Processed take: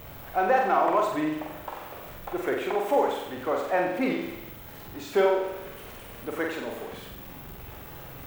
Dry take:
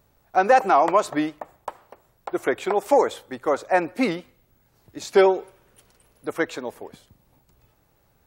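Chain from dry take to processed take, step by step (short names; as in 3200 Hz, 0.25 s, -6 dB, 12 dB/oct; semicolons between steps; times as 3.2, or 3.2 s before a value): zero-crossing step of -31 dBFS; band shelf 7000 Hz -9 dB; flutter echo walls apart 7.8 m, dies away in 0.81 s; gain -7.5 dB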